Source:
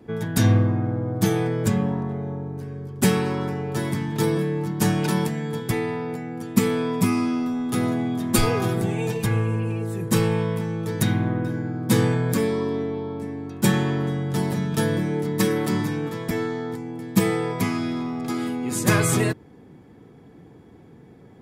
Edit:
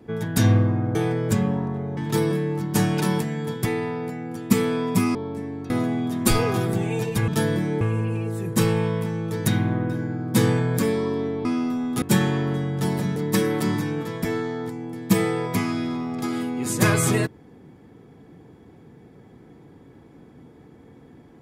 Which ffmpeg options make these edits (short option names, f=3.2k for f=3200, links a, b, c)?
-filter_complex "[0:a]asplit=10[a][b][c][d][e][f][g][h][i][j];[a]atrim=end=0.952[k];[b]atrim=start=1.298:end=2.322[l];[c]atrim=start=4.028:end=7.212[m];[d]atrim=start=12.998:end=13.552[n];[e]atrim=start=7.778:end=9.362[o];[f]atrim=start=14.688:end=15.222[p];[g]atrim=start=9.358:end=13.002[q];[h]atrim=start=7.208:end=7.782[r];[i]atrim=start=13.548:end=14.692[s];[j]atrim=start=15.218[t];[k][l]acrossfade=d=0.004:c1=hsin:c2=hsin[u];[u][m]acrossfade=d=0.004:c1=hsin:c2=hsin[v];[v][n]acrossfade=d=0.004:c1=hsin:c2=hsin[w];[w][o]acrossfade=d=0.004:c1=hsin:c2=hsin[x];[x][p]acrossfade=d=0.004:c1=hsin:c2=hsin[y];[y][q]acrossfade=d=0.004:c1=hsin:c2=hsin[z];[z][r]acrossfade=d=0.004:c1=hsin:c2=hsin[aa];[aa][s]acrossfade=d=0.004:c1=hsin:c2=hsin[ab];[ab][t]acrossfade=d=0.004:c1=hsin:c2=hsin"